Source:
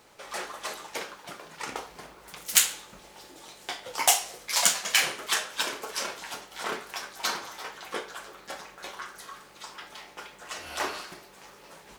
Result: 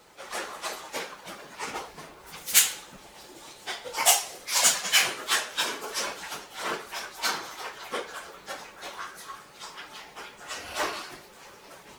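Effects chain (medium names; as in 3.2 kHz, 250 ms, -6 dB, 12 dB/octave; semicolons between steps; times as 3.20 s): phase randomisation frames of 50 ms; trim +1.5 dB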